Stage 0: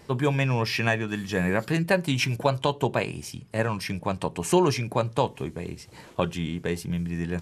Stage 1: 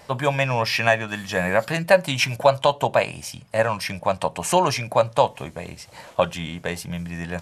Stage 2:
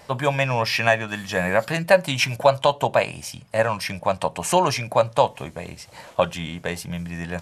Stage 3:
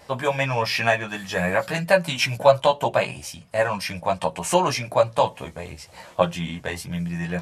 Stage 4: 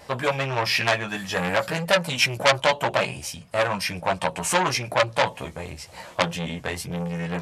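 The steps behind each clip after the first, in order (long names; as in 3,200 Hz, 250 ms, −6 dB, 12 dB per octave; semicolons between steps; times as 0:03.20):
low shelf with overshoot 480 Hz −6 dB, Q 3; level +5 dB
no processing that can be heard
multi-voice chorus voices 4, 0.5 Hz, delay 14 ms, depth 3.3 ms; level +2 dB
saturating transformer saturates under 3,300 Hz; level +2.5 dB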